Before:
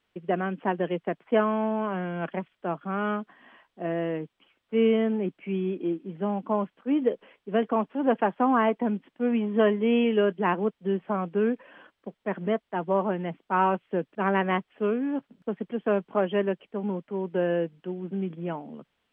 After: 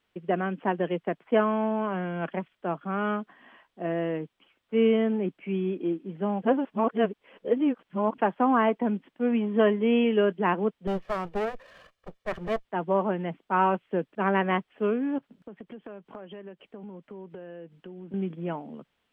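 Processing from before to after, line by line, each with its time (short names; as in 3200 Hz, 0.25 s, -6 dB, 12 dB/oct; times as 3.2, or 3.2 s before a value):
6.42–8.18 reverse
10.87–12.65 minimum comb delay 1.7 ms
15.18–18.14 compressor 12:1, threshold -38 dBFS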